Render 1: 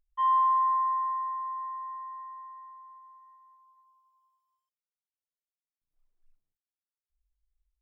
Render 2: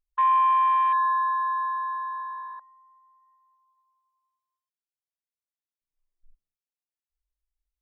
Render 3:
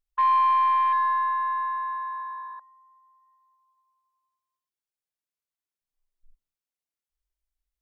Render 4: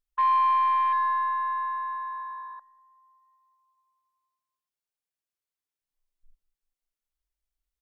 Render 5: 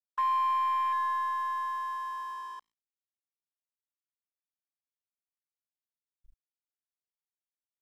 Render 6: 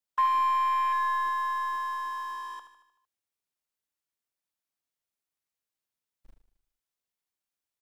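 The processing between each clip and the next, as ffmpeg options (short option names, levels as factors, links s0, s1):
-af "acompressor=threshold=0.0316:ratio=2.5,afwtdn=0.0141,volume=2.82"
-af "aeval=exprs='0.178*(cos(1*acos(clip(val(0)/0.178,-1,1)))-cos(1*PI/2))+0.00282*(cos(3*acos(clip(val(0)/0.178,-1,1)))-cos(3*PI/2))+0.00316*(cos(4*acos(clip(val(0)/0.178,-1,1)))-cos(4*PI/2))':c=same"
-filter_complex "[0:a]asplit=2[s0][s1];[s1]adelay=194,lowpass=f=1200:p=1,volume=0.0794,asplit=2[s2][s3];[s3]adelay=194,lowpass=f=1200:p=1,volume=0.54,asplit=2[s4][s5];[s5]adelay=194,lowpass=f=1200:p=1,volume=0.54,asplit=2[s6][s7];[s7]adelay=194,lowpass=f=1200:p=1,volume=0.54[s8];[s0][s2][s4][s6][s8]amix=inputs=5:normalize=0,volume=0.841"
-af "acompressor=threshold=0.00794:ratio=1.5,aeval=exprs='sgn(val(0))*max(abs(val(0))-0.00178,0)':c=same,volume=1.33"
-filter_complex "[0:a]aecho=1:1:76|152|228|304|380|456:0.316|0.171|0.0922|0.0498|0.0269|0.0145,acrossover=split=190|800[s0][s1][s2];[s0]acrusher=bits=3:mode=log:mix=0:aa=0.000001[s3];[s3][s1][s2]amix=inputs=3:normalize=0,volume=1.68"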